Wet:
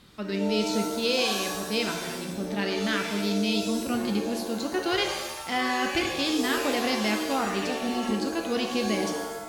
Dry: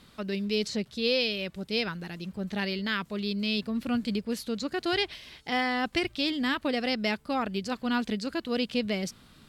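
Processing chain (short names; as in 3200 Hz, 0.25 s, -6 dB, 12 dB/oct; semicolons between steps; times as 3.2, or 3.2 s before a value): spectral repair 7.65–8.11, 810–3900 Hz; shimmer reverb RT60 1 s, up +7 st, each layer -2 dB, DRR 4 dB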